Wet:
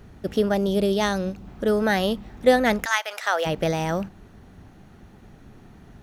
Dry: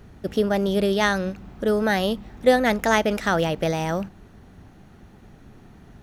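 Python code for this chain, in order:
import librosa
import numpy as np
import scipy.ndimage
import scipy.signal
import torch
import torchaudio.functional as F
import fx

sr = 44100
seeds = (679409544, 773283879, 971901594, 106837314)

y = fx.peak_eq(x, sr, hz=1700.0, db=-7.0, octaves=1.2, at=(0.54, 1.47))
y = fx.highpass(y, sr, hz=fx.line((2.84, 1200.0), (3.45, 440.0)), slope=24, at=(2.84, 3.45), fade=0.02)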